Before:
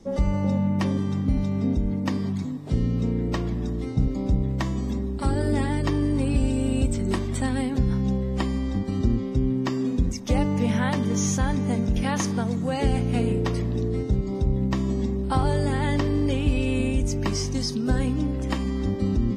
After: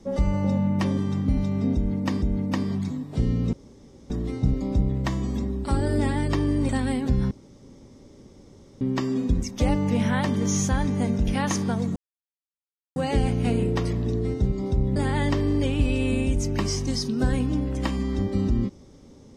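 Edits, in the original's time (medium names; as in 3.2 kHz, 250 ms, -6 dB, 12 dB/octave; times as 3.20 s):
1.76–2.22 s: loop, 2 plays
3.07–3.64 s: room tone
6.23–7.38 s: delete
8.00–9.50 s: room tone
12.65 s: insert silence 1.00 s
14.65–15.63 s: delete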